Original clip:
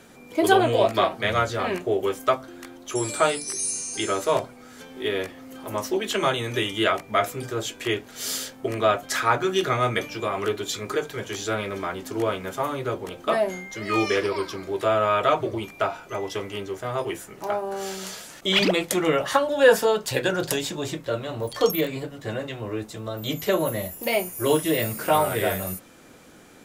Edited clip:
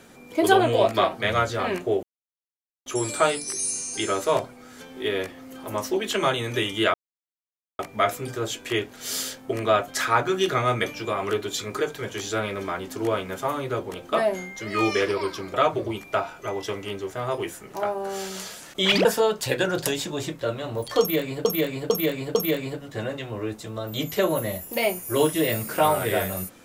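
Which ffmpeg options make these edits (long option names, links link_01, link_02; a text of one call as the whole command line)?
ffmpeg -i in.wav -filter_complex "[0:a]asplit=9[link_01][link_02][link_03][link_04][link_05][link_06][link_07][link_08][link_09];[link_01]atrim=end=2.03,asetpts=PTS-STARTPTS,afade=type=out:start_time=2.026:duration=0.004:curve=hsin[link_10];[link_02]atrim=start=2.03:end=2.86,asetpts=PTS-STARTPTS,volume=0[link_11];[link_03]atrim=start=2.86:end=6.94,asetpts=PTS-STARTPTS,afade=type=in:duration=0.004:curve=hsin,afade=type=out:start_time=4.076:duration=0.004:curve=hsin,apad=pad_dur=0.85[link_12];[link_04]atrim=start=6.94:end=14.692,asetpts=PTS-STARTPTS,afade=type=in:duration=0.004:curve=hsin[link_13];[link_05]atrim=start=15.208:end=18.722[link_14];[link_06]atrim=start=19.698:end=22.102[link_15];[link_07]atrim=start=21.648:end=22.102[link_16];[link_08]atrim=start=21.648:end=22.102[link_17];[link_09]atrim=start=21.648[link_18];[link_10][link_11][link_12][link_13]concat=n=4:v=0:a=1[link_19];[link_19][link_14]acrossfade=duration=0.004:curve1=hsin:curve2=hsin[link_20];[link_20][link_15]acrossfade=duration=0.004:curve1=hsin:curve2=hsin[link_21];[link_21][link_16]acrossfade=duration=0.004:curve1=hsin:curve2=hsin[link_22];[link_22][link_17]acrossfade=duration=0.004:curve1=hsin:curve2=hsin[link_23];[link_23][link_18]acrossfade=duration=0.004:curve1=hsin:curve2=hsin" out.wav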